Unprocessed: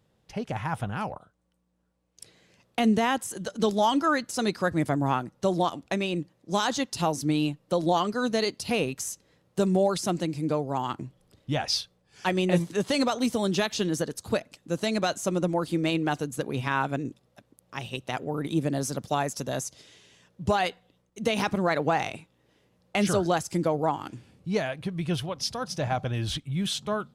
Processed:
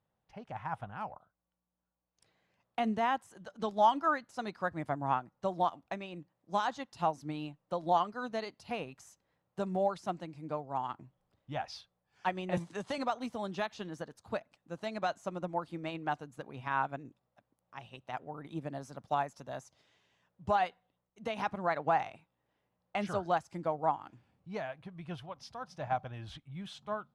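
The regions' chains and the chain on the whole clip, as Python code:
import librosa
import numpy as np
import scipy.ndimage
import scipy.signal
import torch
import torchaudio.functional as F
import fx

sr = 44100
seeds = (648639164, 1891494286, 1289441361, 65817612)

y = fx.chain(x, sr, fx.lowpass(hz=10000.0, slope=24),
    fx.high_shelf(hz=6100.0, db=12.0),
    fx.band_squash(depth_pct=70), at=(12.57, 12.98))
y = fx.lowpass(y, sr, hz=1200.0, slope=6)
y = fx.low_shelf_res(y, sr, hz=580.0, db=-7.0, q=1.5)
y = fx.upward_expand(y, sr, threshold_db=-37.0, expansion=1.5)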